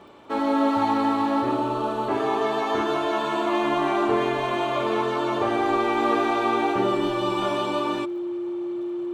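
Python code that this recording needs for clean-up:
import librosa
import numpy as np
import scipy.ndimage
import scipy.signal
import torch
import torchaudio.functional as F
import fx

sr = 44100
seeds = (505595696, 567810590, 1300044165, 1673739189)

y = fx.fix_declick_ar(x, sr, threshold=6.5)
y = fx.notch(y, sr, hz=350.0, q=30.0)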